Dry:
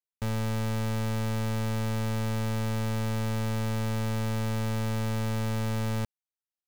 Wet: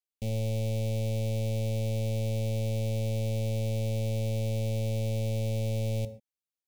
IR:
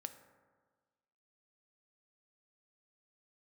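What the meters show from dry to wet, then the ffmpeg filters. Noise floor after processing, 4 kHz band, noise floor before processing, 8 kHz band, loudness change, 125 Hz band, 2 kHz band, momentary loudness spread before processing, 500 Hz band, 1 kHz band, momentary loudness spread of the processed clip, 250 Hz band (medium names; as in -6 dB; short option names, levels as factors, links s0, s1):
under -85 dBFS, -3.0 dB, under -85 dBFS, -2.5 dB, -0.5 dB, +0.5 dB, -9.0 dB, 0 LU, +2.5 dB, -12.5 dB, 0 LU, -5.0 dB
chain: -filter_complex "[0:a]asuperstop=centerf=1300:order=12:qfactor=0.91[s0];[1:a]atrim=start_sample=2205,atrim=end_sample=6615[s1];[s0][s1]afir=irnorm=-1:irlink=0,volume=1.19"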